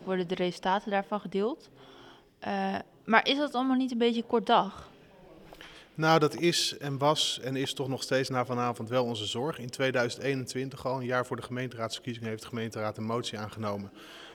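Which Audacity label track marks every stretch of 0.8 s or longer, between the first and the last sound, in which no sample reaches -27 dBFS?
1.530000	2.440000	silence
4.640000	5.990000	silence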